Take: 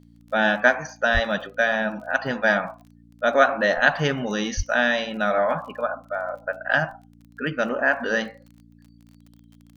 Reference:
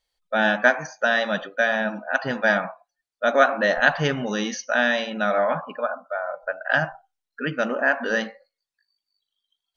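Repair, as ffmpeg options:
-filter_complex "[0:a]adeclick=t=4,bandreject=f=57.6:t=h:w=4,bandreject=f=115.2:t=h:w=4,bandreject=f=172.8:t=h:w=4,bandreject=f=230.4:t=h:w=4,bandreject=f=288:t=h:w=4,asplit=3[a][b][c];[a]afade=t=out:st=1.13:d=0.02[d];[b]highpass=f=140:w=0.5412,highpass=f=140:w=1.3066,afade=t=in:st=1.13:d=0.02,afade=t=out:st=1.25:d=0.02[e];[c]afade=t=in:st=1.25:d=0.02[f];[d][e][f]amix=inputs=3:normalize=0,asplit=3[g][h][i];[g]afade=t=out:st=4.56:d=0.02[j];[h]highpass=f=140:w=0.5412,highpass=f=140:w=1.3066,afade=t=in:st=4.56:d=0.02,afade=t=out:st=4.68:d=0.02[k];[i]afade=t=in:st=4.68:d=0.02[l];[j][k][l]amix=inputs=3:normalize=0"

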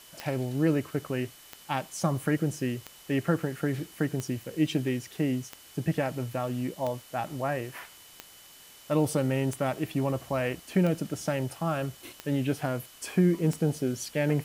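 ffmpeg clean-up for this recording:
-af "adeclick=t=4,bandreject=f=3k:w=30,afftdn=nr=22:nf=-52"

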